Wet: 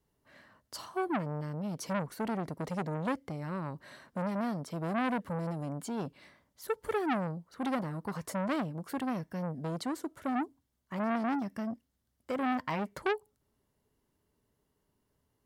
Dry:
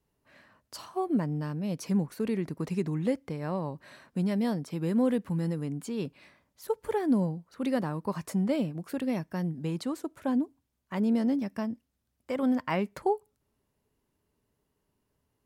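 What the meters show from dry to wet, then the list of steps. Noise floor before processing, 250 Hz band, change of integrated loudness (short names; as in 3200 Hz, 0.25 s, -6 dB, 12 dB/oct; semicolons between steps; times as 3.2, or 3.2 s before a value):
-79 dBFS, -6.0 dB, -4.5 dB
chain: notch 2500 Hz, Q 9.6; core saturation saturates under 1400 Hz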